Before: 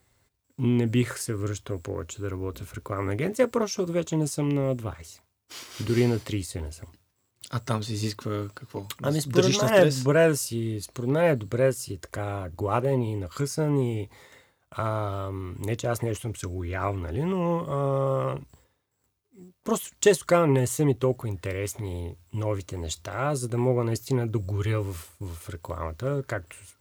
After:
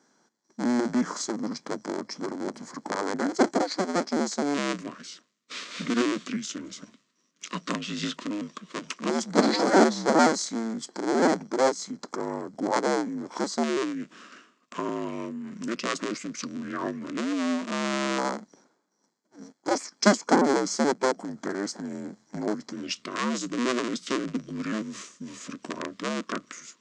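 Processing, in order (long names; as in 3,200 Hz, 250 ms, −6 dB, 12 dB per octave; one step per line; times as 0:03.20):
sub-harmonics by changed cycles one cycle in 2, inverted
auto-filter notch square 0.11 Hz 830–3,700 Hz
elliptic band-pass filter 220–9,700 Hz, stop band 40 dB
in parallel at −1 dB: downward compressor, threshold −38 dBFS, peak gain reduction 22.5 dB
on the sum: formants moved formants −5 semitones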